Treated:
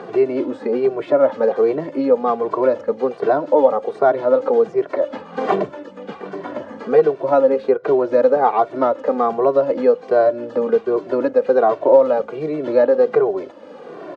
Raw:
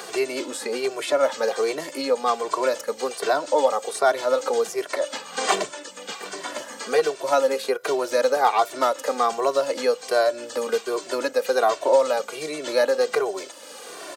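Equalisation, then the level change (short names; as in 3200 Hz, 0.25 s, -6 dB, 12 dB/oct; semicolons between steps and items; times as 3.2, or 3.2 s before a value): tape spacing loss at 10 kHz 29 dB; tilt -4 dB/oct; +4.5 dB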